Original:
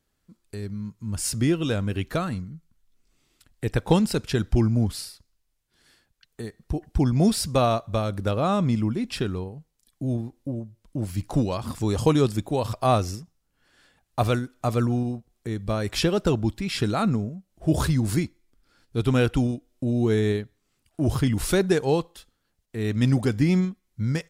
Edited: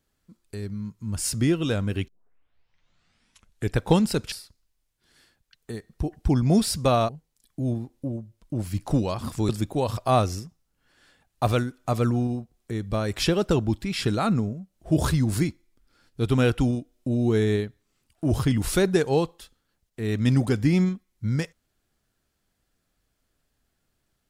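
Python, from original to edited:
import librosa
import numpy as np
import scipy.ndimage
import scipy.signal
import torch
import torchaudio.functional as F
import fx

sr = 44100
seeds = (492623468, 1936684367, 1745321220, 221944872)

y = fx.edit(x, sr, fx.tape_start(start_s=2.08, length_s=1.69),
    fx.cut(start_s=4.32, length_s=0.7),
    fx.cut(start_s=7.79, length_s=1.73),
    fx.cut(start_s=11.92, length_s=0.33), tone=tone)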